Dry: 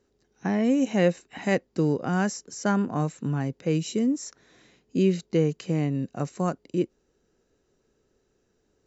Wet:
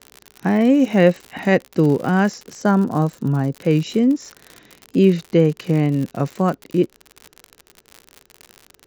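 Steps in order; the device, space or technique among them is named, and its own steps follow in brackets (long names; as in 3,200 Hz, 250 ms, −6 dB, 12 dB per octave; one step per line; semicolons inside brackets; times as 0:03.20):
lo-fi chain (low-pass filter 4,100 Hz 12 dB per octave; tape wow and flutter; surface crackle 78 per second −33 dBFS)
0:02.60–0:03.57: parametric band 2,400 Hz −8.5 dB 0.93 octaves
level +8 dB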